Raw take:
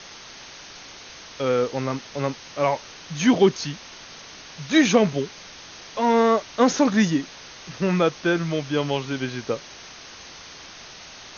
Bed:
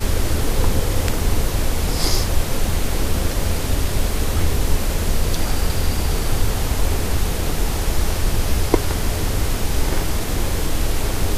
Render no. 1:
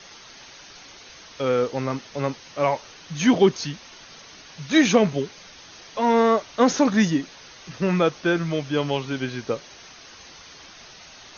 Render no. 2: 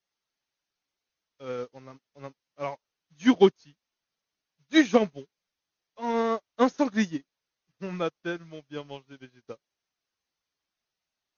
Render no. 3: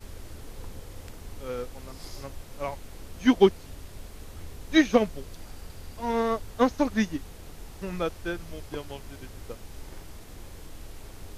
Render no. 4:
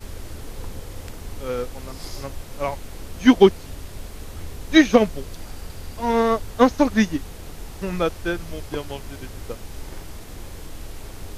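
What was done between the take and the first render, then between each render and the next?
noise reduction 6 dB, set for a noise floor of -43 dBFS
upward expansion 2.5:1, over -40 dBFS
add bed -23 dB
trim +7 dB; peak limiter -1 dBFS, peak gain reduction 2 dB

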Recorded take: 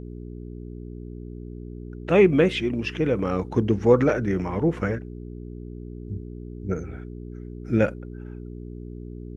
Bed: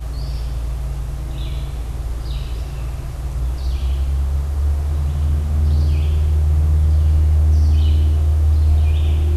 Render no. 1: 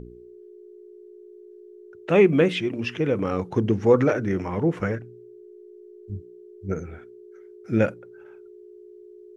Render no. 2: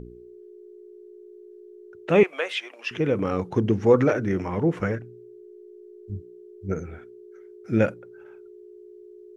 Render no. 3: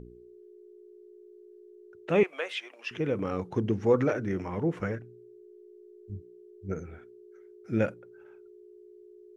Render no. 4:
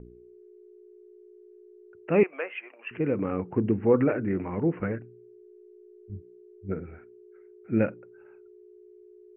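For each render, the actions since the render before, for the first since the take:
de-hum 60 Hz, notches 5
2.23–2.91 s: high-pass 630 Hz 24 dB/octave
trim -6 dB
steep low-pass 2.8 kHz 96 dB/octave; dynamic bell 260 Hz, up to +5 dB, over -42 dBFS, Q 1.2

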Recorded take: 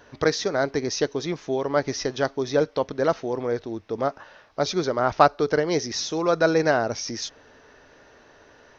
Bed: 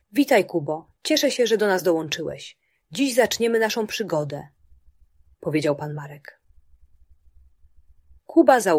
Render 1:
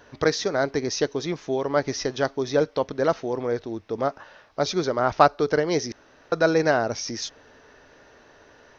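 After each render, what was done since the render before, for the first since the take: 5.92–6.32 s: room tone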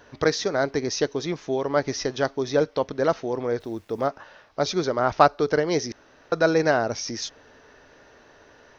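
3.60–4.07 s: word length cut 10-bit, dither none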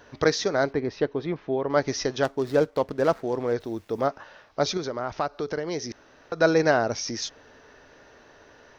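0.73–1.70 s: distance through air 380 m; 2.23–3.54 s: median filter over 15 samples; 4.77–6.40 s: compression 2:1, threshold -31 dBFS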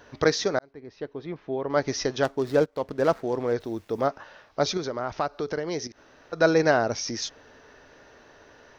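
0.59–1.98 s: fade in; 2.66–3.11 s: fade in equal-power, from -14 dB; 5.87–6.33 s: compression 4:1, threshold -45 dBFS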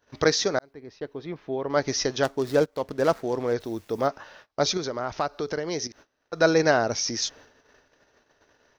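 gate -50 dBFS, range -23 dB; treble shelf 4.6 kHz +7.5 dB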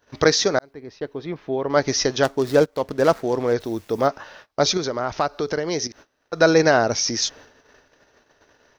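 trim +5 dB; peak limiter -3 dBFS, peak gain reduction 2.5 dB

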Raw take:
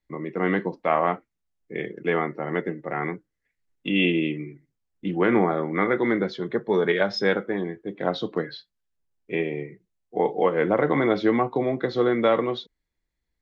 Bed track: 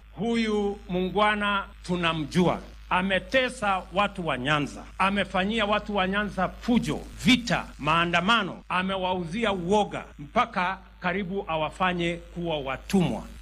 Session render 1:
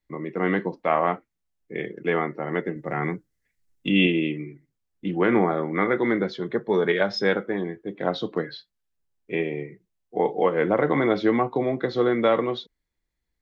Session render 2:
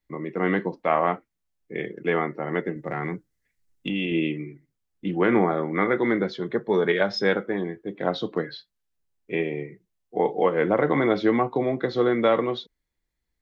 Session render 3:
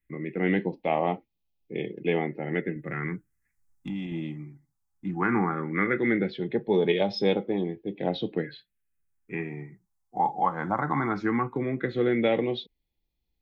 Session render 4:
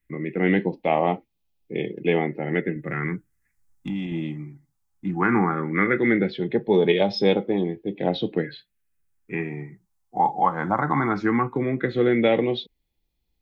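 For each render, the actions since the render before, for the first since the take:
2.76–4.07 s: tone controls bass +6 dB, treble +7 dB
2.82–4.12 s: compression, threshold -23 dBFS
small resonant body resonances 820/2500 Hz, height 10 dB, ringing for 45 ms; phase shifter stages 4, 0.17 Hz, lowest notch 430–1500 Hz
trim +4.5 dB

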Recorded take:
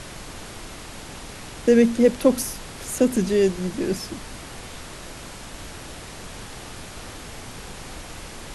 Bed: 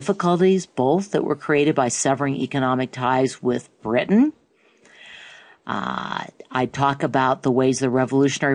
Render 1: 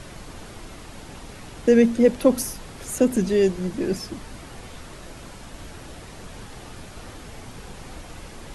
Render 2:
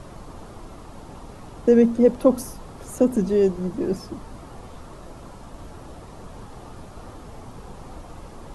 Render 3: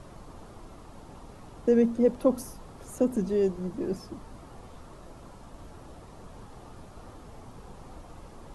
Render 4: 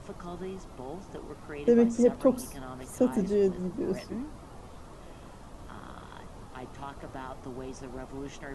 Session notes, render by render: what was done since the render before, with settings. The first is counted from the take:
noise reduction 6 dB, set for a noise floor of -39 dBFS
resonant high shelf 1.5 kHz -7.5 dB, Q 1.5; band-stop 1.5 kHz, Q 25
trim -6.5 dB
add bed -22.5 dB

